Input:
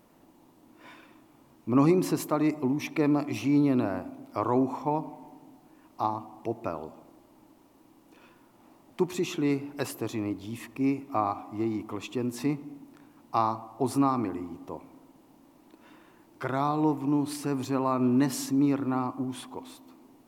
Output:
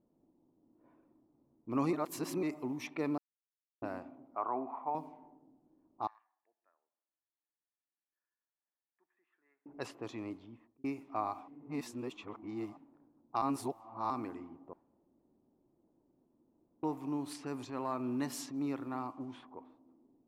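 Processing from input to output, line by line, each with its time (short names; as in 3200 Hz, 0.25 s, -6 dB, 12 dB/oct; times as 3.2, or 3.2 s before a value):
1.93–2.43 reverse
3.18–3.82 mute
4.35–4.95 speaker cabinet 290–2100 Hz, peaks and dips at 320 Hz -6 dB, 500 Hz -8 dB, 720 Hz +6 dB, 1200 Hz +4 dB, 1700 Hz -5 dB
6.07–9.66 ladder band-pass 1800 Hz, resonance 85%
10.33–10.84 fade out
11.48–12.77 reverse
13.42–14.1 reverse
14.73–16.83 room tone
17.56–19.17 transient shaper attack -6 dB, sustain -1 dB
whole clip: low-pass opened by the level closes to 360 Hz, open at -25.5 dBFS; low shelf 280 Hz -7 dB; gain -7.5 dB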